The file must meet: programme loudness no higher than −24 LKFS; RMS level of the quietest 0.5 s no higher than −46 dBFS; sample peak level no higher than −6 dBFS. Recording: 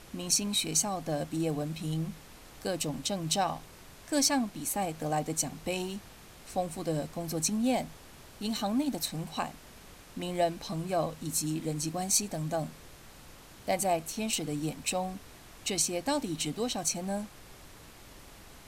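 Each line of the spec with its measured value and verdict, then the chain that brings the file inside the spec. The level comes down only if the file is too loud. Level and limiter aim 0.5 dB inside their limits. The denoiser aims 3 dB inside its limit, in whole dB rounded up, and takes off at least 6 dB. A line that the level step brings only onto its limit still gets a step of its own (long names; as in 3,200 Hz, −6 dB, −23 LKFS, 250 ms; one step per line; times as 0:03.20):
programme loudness −31.5 LKFS: in spec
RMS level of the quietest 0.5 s −51 dBFS: in spec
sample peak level −12.5 dBFS: in spec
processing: no processing needed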